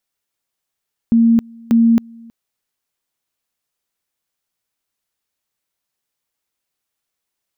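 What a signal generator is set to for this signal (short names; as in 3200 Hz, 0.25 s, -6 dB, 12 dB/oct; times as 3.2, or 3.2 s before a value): two-level tone 230 Hz -8 dBFS, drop 27.5 dB, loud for 0.27 s, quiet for 0.32 s, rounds 2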